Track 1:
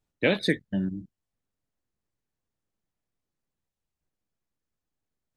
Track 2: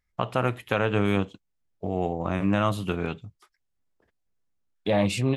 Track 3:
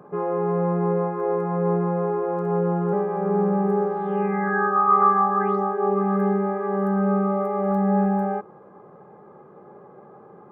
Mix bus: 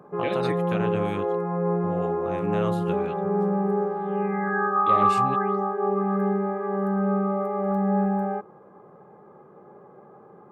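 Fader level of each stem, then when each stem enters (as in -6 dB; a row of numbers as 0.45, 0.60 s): -9.0, -7.5, -2.5 dB; 0.00, 0.00, 0.00 s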